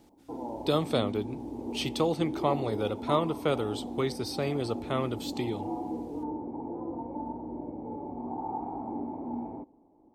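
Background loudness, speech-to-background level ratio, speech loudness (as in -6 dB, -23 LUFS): -37.5 LUFS, 6.0 dB, -31.5 LUFS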